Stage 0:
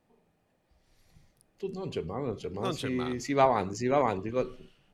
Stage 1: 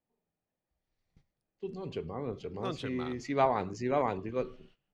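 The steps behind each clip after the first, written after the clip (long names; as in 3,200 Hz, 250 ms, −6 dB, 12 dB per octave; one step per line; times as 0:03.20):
Bessel low-pass filter 4,500 Hz, order 2
noise gate −56 dBFS, range −14 dB
level −3.5 dB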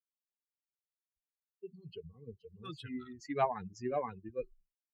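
spectral dynamics exaggerated over time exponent 3
level −1 dB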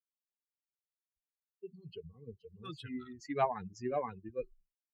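no processing that can be heard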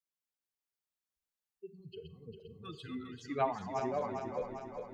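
feedback delay that plays each chunk backwards 200 ms, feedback 75%, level −6 dB
four-comb reverb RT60 0.46 s, combs from 32 ms, DRR 14.5 dB
level −1.5 dB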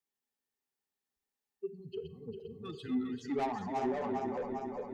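soft clipping −35.5 dBFS, distortion −8 dB
hollow resonant body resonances 250/400/810/1,800 Hz, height 11 dB, ringing for 45 ms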